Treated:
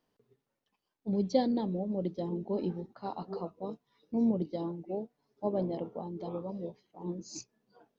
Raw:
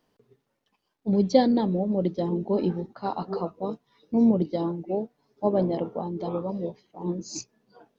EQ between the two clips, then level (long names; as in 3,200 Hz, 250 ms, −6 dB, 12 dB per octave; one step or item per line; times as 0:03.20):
dynamic equaliser 1,500 Hz, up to −4 dB, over −45 dBFS, Q 1.5
−8.0 dB